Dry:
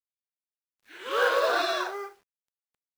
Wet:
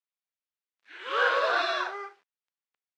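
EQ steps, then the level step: HPF 220 Hz 12 dB/oct; tape spacing loss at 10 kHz 27 dB; tilt shelf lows -8.5 dB, about 860 Hz; +1.5 dB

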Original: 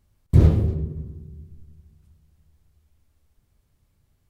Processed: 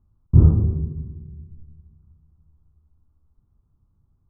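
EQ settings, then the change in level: steep low-pass 1300 Hz 48 dB/oct; air absorption 440 m; bell 570 Hz -11 dB 0.97 oct; +2.5 dB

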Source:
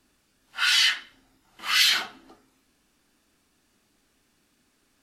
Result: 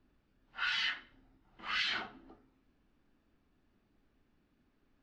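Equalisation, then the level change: brick-wall FIR low-pass 11000 Hz; air absorption 200 m; tilt -2 dB/oct; -7.0 dB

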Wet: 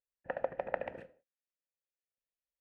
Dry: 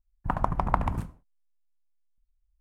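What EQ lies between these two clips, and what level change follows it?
vowel filter e; low shelf 330 Hz -10.5 dB; high shelf 3000 Hz -10 dB; +11.0 dB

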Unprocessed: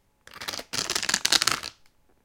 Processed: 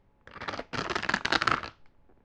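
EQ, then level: dynamic EQ 1300 Hz, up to +4 dB, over -41 dBFS, Q 1.4; tape spacing loss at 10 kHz 32 dB; high shelf 5900 Hz -4.5 dB; +4.0 dB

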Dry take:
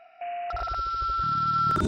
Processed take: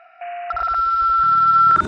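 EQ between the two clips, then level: bell 1400 Hz +15 dB 1.8 oct; -3.5 dB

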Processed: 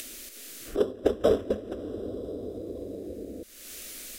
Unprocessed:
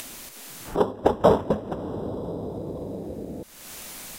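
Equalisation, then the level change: fixed phaser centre 370 Hz, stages 4; -1.5 dB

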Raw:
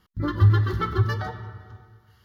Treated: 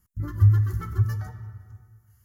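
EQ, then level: EQ curve 110 Hz 0 dB, 170 Hz -6 dB, 260 Hz -9 dB, 430 Hz -16 dB, 730 Hz -14 dB, 1400 Hz -12 dB, 2200 Hz -11 dB, 3700 Hz -23 dB, 7200 Hz +7 dB; 0.0 dB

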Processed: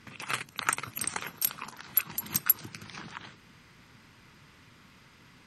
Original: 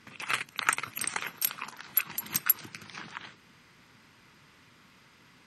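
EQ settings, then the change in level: low shelf 110 Hz +10 dB; dynamic EQ 2200 Hz, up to -5 dB, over -46 dBFS, Q 0.85; +1.0 dB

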